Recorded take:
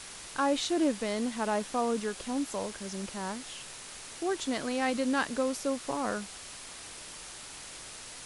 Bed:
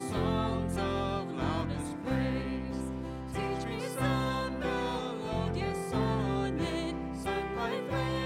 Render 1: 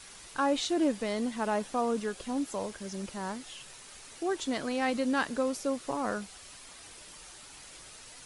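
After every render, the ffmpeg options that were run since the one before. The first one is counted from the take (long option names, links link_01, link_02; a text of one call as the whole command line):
ffmpeg -i in.wav -af "afftdn=noise_reduction=7:noise_floor=-46" out.wav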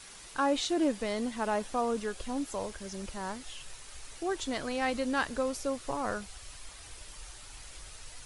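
ffmpeg -i in.wav -af "asubboost=boost=7:cutoff=76" out.wav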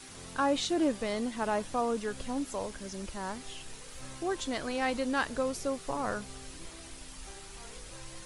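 ffmpeg -i in.wav -i bed.wav -filter_complex "[1:a]volume=-19.5dB[link_01];[0:a][link_01]amix=inputs=2:normalize=0" out.wav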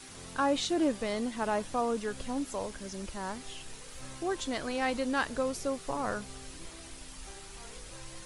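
ffmpeg -i in.wav -af anull out.wav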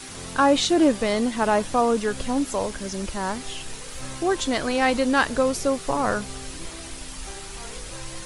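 ffmpeg -i in.wav -af "volume=10dB" out.wav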